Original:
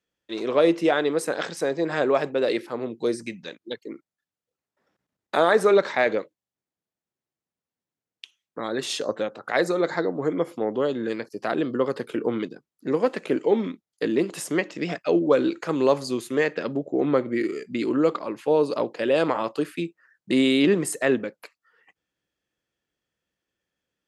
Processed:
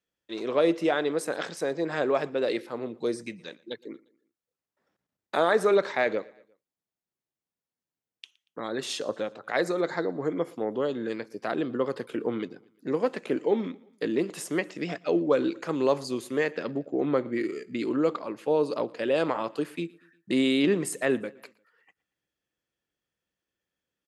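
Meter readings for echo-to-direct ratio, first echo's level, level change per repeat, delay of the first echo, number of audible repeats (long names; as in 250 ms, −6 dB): −23.0 dB, −24.0 dB, −6.0 dB, 117 ms, 2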